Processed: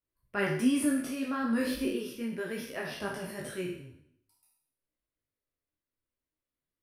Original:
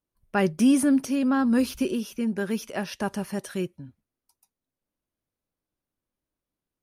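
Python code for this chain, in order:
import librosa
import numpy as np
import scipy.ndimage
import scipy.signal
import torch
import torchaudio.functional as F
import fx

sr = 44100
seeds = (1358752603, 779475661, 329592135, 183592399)

y = fx.spec_trails(x, sr, decay_s=0.71)
y = fx.graphic_eq_31(y, sr, hz=(200, 800, 2000, 6300), db=(-9, -7, 5, -10))
y = fx.detune_double(y, sr, cents=20)
y = y * 10.0 ** (-3.0 / 20.0)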